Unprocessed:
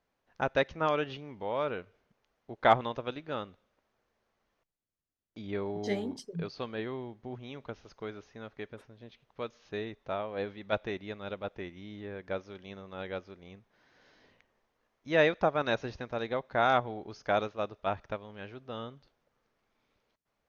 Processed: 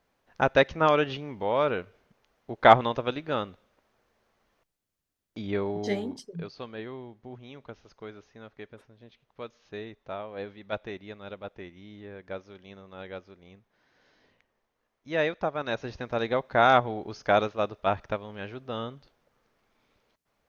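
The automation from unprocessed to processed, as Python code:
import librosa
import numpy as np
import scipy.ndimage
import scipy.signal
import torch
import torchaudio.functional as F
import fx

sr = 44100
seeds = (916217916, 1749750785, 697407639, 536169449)

y = fx.gain(x, sr, db=fx.line((5.4, 7.0), (6.56, -2.0), (15.64, -2.0), (16.17, 6.0)))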